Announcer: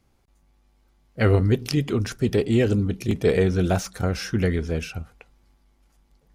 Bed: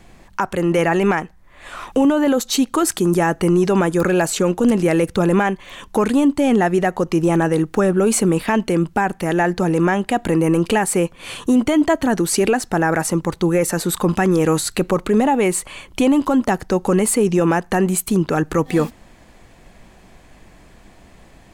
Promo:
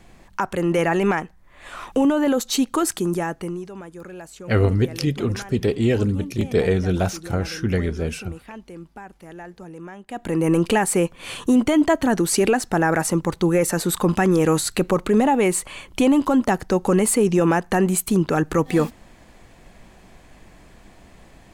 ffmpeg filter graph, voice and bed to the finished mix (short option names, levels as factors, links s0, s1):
-filter_complex "[0:a]adelay=3300,volume=1.06[s0];[1:a]volume=6.68,afade=t=out:st=2.77:d=0.92:silence=0.125893,afade=t=in:st=10.06:d=0.47:silence=0.105925[s1];[s0][s1]amix=inputs=2:normalize=0"